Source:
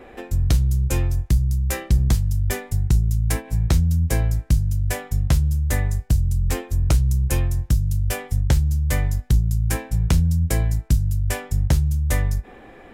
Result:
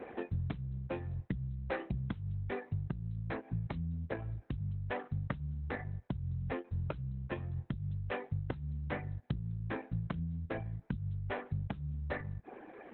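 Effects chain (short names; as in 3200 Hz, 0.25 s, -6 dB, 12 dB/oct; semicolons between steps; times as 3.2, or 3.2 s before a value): BPF 140–2100 Hz; 4.18–4.61 dynamic EQ 190 Hz, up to -7 dB, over -39 dBFS, Q 1.8; compressor 8:1, threshold -30 dBFS, peak gain reduction 12.5 dB; soft clip -21.5 dBFS, distortion -24 dB; reverb removal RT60 1.7 s; Opus 8 kbps 48000 Hz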